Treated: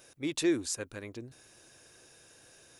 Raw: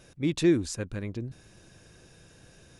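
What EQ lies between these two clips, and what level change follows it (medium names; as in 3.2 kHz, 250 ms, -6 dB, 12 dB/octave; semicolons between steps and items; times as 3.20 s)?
RIAA curve recording; peaking EQ 180 Hz -10.5 dB 0.3 oct; treble shelf 2.2 kHz -9 dB; 0.0 dB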